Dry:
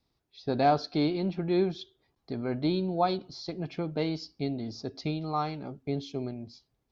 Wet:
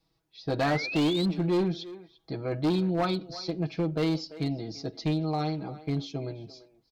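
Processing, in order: comb 6.2 ms, depth 92%; speakerphone echo 0.34 s, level -16 dB; painted sound rise, 0.6–1.26, 1600–4200 Hz -35 dBFS; overloaded stage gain 21.5 dB

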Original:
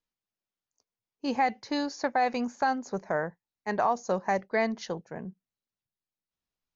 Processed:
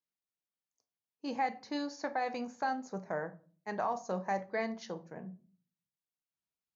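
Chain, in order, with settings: HPF 78 Hz; shoebox room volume 310 m³, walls furnished, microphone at 0.61 m; gain -8 dB

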